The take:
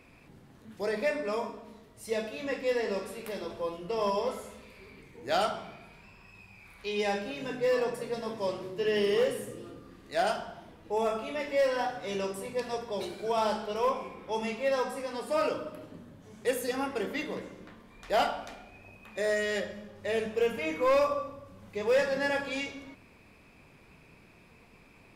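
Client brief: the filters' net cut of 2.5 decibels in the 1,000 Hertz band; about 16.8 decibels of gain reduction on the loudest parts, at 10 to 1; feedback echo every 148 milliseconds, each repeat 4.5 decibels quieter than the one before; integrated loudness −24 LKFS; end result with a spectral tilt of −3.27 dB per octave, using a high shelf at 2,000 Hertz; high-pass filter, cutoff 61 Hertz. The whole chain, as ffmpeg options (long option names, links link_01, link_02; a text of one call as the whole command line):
ffmpeg -i in.wav -af "highpass=61,equalizer=frequency=1000:width_type=o:gain=-5,highshelf=frequency=2000:gain=7,acompressor=threshold=-40dB:ratio=10,aecho=1:1:148|296|444|592|740|888|1036|1184|1332:0.596|0.357|0.214|0.129|0.0772|0.0463|0.0278|0.0167|0.01,volume=18.5dB" out.wav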